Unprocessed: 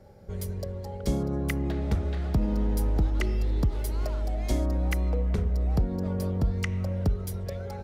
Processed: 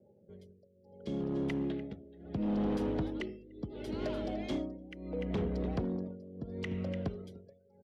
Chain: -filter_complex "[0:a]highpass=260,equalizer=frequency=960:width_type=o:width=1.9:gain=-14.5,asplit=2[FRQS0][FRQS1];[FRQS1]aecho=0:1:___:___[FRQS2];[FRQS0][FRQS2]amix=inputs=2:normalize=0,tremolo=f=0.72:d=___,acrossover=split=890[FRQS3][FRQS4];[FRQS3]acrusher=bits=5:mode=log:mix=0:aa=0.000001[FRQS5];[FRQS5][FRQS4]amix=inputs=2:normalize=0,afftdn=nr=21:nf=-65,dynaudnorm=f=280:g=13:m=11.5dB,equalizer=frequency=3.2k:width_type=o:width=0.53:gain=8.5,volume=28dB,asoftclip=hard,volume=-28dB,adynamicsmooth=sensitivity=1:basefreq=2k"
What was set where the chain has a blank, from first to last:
296, 0.188, 0.91